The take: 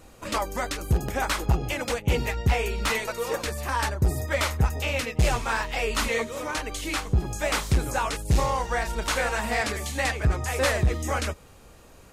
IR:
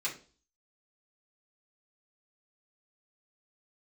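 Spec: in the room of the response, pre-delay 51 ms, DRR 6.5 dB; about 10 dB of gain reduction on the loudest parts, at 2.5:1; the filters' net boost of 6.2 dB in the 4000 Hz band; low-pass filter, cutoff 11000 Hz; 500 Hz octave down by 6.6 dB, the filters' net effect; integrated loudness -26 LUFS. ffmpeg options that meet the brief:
-filter_complex "[0:a]lowpass=11k,equalizer=f=500:t=o:g=-8,equalizer=f=4k:t=o:g=8,acompressor=threshold=-32dB:ratio=2.5,asplit=2[a][b];[1:a]atrim=start_sample=2205,adelay=51[c];[b][c]afir=irnorm=-1:irlink=0,volume=-11dB[d];[a][d]amix=inputs=2:normalize=0,volume=6dB"

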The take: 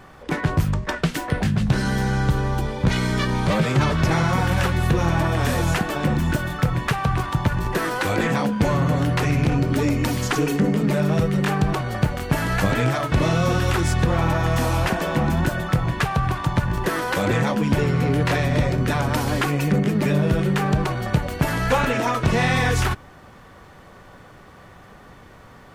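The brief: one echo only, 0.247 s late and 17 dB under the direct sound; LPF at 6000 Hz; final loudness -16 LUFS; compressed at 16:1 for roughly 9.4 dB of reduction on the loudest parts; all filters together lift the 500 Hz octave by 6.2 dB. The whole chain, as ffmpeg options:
-af "lowpass=6k,equalizer=f=500:t=o:g=7.5,acompressor=threshold=-19dB:ratio=16,aecho=1:1:247:0.141,volume=8.5dB"

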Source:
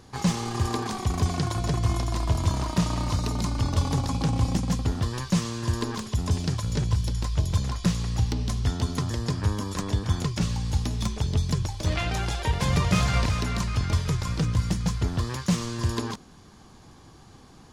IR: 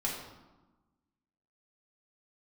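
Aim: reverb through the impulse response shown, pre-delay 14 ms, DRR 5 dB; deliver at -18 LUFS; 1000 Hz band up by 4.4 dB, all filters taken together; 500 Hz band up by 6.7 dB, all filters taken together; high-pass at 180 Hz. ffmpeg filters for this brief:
-filter_complex "[0:a]highpass=180,equalizer=f=500:t=o:g=8,equalizer=f=1k:t=o:g=3,asplit=2[a][b];[1:a]atrim=start_sample=2205,adelay=14[c];[b][c]afir=irnorm=-1:irlink=0,volume=-10dB[d];[a][d]amix=inputs=2:normalize=0,volume=9.5dB"

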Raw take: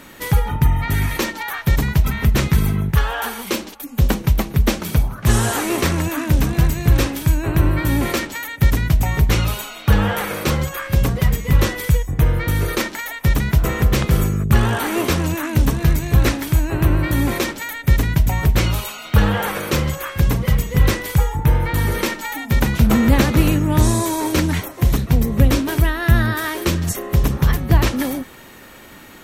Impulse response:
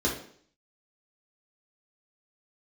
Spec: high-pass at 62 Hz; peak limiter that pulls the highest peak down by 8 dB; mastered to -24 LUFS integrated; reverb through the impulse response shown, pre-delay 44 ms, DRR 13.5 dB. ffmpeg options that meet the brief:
-filter_complex "[0:a]highpass=62,alimiter=limit=-9dB:level=0:latency=1,asplit=2[a][b];[1:a]atrim=start_sample=2205,adelay=44[c];[b][c]afir=irnorm=-1:irlink=0,volume=-24dB[d];[a][d]amix=inputs=2:normalize=0,volume=-3.5dB"

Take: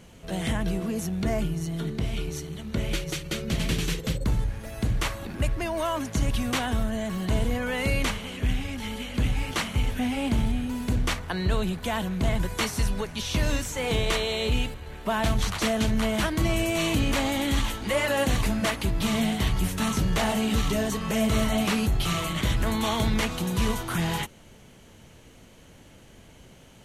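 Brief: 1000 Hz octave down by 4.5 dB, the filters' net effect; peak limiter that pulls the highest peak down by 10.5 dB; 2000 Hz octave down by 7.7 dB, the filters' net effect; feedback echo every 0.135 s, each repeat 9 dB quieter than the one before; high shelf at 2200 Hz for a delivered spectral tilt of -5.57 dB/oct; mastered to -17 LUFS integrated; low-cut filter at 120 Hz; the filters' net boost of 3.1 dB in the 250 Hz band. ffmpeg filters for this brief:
-af "highpass=120,equalizer=f=250:t=o:g=4.5,equalizer=f=1k:t=o:g=-4,equalizer=f=2k:t=o:g=-7,highshelf=f=2.2k:g=-3,alimiter=limit=-23dB:level=0:latency=1,aecho=1:1:135|270|405|540:0.355|0.124|0.0435|0.0152,volume=14dB"

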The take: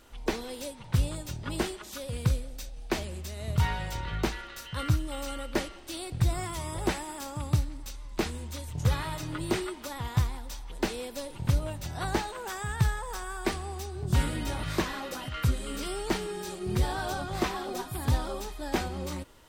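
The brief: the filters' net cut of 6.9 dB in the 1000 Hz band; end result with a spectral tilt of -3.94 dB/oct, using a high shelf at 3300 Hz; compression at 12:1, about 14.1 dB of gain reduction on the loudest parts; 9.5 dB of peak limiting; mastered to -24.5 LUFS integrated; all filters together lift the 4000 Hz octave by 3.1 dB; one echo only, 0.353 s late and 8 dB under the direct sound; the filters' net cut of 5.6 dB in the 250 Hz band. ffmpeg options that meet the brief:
-af "equalizer=f=250:t=o:g=-8.5,equalizer=f=1k:t=o:g=-8.5,highshelf=f=3.3k:g=-6,equalizer=f=4k:t=o:g=8.5,acompressor=threshold=-35dB:ratio=12,alimiter=level_in=7.5dB:limit=-24dB:level=0:latency=1,volume=-7.5dB,aecho=1:1:353:0.398,volume=17dB"

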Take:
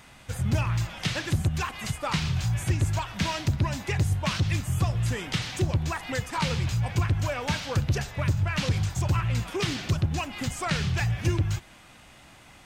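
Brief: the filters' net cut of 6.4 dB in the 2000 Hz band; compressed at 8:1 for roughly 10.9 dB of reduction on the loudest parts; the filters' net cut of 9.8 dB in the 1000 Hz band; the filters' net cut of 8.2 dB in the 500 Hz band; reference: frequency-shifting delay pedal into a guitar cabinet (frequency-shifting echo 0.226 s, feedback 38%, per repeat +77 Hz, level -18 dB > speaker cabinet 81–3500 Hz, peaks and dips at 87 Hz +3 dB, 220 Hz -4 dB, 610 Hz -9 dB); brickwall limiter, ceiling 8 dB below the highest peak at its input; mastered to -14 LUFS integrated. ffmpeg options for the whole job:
-filter_complex "[0:a]equalizer=f=500:t=o:g=-5.5,equalizer=f=1k:t=o:g=-8,equalizer=f=2k:t=o:g=-5.5,acompressor=threshold=-31dB:ratio=8,alimiter=level_in=4dB:limit=-24dB:level=0:latency=1,volume=-4dB,asplit=4[a][b][c][d];[b]adelay=226,afreqshift=77,volume=-18dB[e];[c]adelay=452,afreqshift=154,volume=-26.4dB[f];[d]adelay=678,afreqshift=231,volume=-34.8dB[g];[a][e][f][g]amix=inputs=4:normalize=0,highpass=81,equalizer=f=87:t=q:w=4:g=3,equalizer=f=220:t=q:w=4:g=-4,equalizer=f=610:t=q:w=4:g=-9,lowpass=f=3.5k:w=0.5412,lowpass=f=3.5k:w=1.3066,volume=25dB"

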